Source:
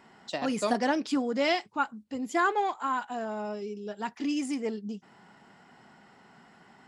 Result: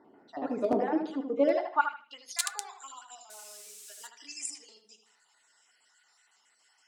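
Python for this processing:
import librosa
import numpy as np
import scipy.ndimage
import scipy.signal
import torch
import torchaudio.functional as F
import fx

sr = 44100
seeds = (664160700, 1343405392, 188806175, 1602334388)

p1 = fx.spec_dropout(x, sr, seeds[0], share_pct=38)
p2 = fx.level_steps(p1, sr, step_db=13)
p3 = p1 + (p2 * 10.0 ** (0.0 / 20.0))
p4 = fx.transient(p3, sr, attack_db=-10, sustain_db=8, at=(0.71, 1.22))
p5 = fx.peak_eq(p4, sr, hz=190.0, db=-11.5, octaves=1.3)
p6 = p5 + fx.echo_filtered(p5, sr, ms=77, feedback_pct=38, hz=2900.0, wet_db=-6.0, dry=0)
p7 = (np.mod(10.0 ** (13.5 / 20.0) * p6 + 1.0, 2.0) - 1.0) / 10.0 ** (13.5 / 20.0)
p8 = fx.low_shelf(p7, sr, hz=470.0, db=-7.0, at=(1.91, 2.43))
p9 = fx.quant_dither(p8, sr, seeds[1], bits=8, dither='triangular', at=(3.3, 4.07))
p10 = fx.filter_sweep_bandpass(p9, sr, from_hz=310.0, to_hz=7700.0, start_s=1.38, end_s=2.4, q=1.8)
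p11 = fx.rev_fdn(p10, sr, rt60_s=0.33, lf_ratio=1.0, hf_ratio=0.5, size_ms=20.0, drr_db=10.0)
y = p11 * 10.0 ** (5.5 / 20.0)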